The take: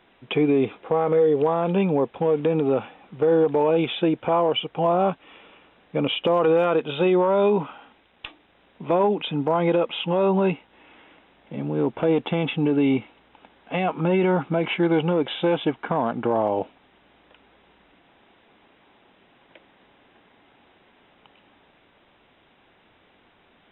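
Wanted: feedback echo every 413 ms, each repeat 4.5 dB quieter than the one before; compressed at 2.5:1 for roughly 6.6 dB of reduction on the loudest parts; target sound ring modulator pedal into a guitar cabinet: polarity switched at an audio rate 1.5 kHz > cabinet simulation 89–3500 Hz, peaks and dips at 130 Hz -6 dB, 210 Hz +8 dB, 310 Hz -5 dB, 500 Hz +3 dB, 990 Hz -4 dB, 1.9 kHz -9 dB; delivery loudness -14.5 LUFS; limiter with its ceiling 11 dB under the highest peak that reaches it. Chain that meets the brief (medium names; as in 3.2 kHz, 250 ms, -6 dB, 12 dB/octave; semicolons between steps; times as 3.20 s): compression 2.5:1, threshold -26 dBFS; peak limiter -25 dBFS; feedback delay 413 ms, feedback 60%, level -4.5 dB; polarity switched at an audio rate 1.5 kHz; cabinet simulation 89–3500 Hz, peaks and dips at 130 Hz -6 dB, 210 Hz +8 dB, 310 Hz -5 dB, 500 Hz +3 dB, 990 Hz -4 dB, 1.9 kHz -9 dB; trim +21 dB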